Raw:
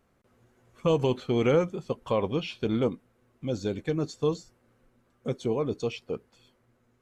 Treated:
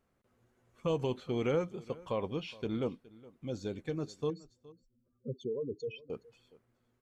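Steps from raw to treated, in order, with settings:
0:04.30–0:06.10: expanding power law on the bin magnitudes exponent 2.7
on a send: single-tap delay 417 ms −21 dB
on the sum: level −8 dB

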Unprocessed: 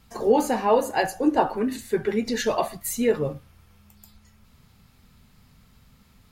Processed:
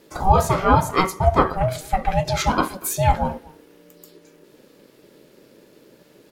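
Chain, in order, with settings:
far-end echo of a speakerphone 240 ms, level −22 dB
ring modulation 380 Hz
level +7 dB

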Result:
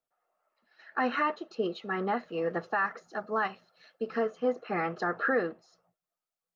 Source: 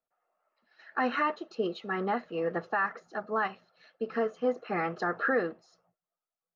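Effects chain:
0:02.20–0:04.21: bass and treble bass 0 dB, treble +5 dB

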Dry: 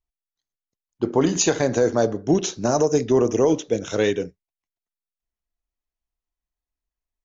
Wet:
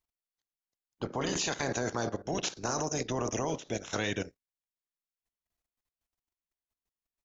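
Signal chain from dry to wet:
ceiling on every frequency bin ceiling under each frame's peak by 17 dB
output level in coarse steps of 14 dB
level −3.5 dB

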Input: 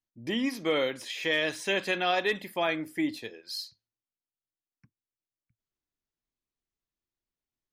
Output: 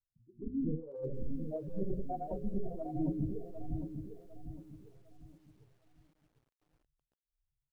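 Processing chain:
stylus tracing distortion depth 0.25 ms
drawn EQ curve 130 Hz 0 dB, 260 Hz −15 dB, 7,500 Hz −25 dB
convolution reverb RT60 0.30 s, pre-delay 97 ms, DRR −7.5 dB
in parallel at −4 dB: comparator with hysteresis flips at −49 dBFS
on the sum: volume swells 245 ms
gate on every frequency bin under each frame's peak −10 dB strong
on a send: repeating echo 213 ms, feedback 33%, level −15 dB
on the sum: compressor whose output falls as the input rises −34 dBFS, ratio −0.5
mains-hum notches 60/120/180/240/300/360/420/480/540/600 Hz
two-band tremolo in antiphase 1.6 Hz, depth 100%, crossover 440 Hz
dynamic equaliser 340 Hz, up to +3 dB, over −51 dBFS, Q 1.7
feedback echo at a low word length 753 ms, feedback 35%, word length 12 bits, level −7.5 dB
level +3.5 dB

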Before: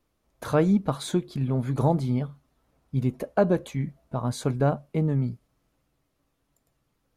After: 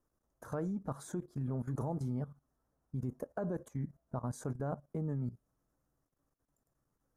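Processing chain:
flat-topped bell 3,100 Hz −15 dB 1.3 octaves
brickwall limiter −16.5 dBFS, peak gain reduction 6.5 dB
output level in coarse steps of 15 dB
level −5.5 dB

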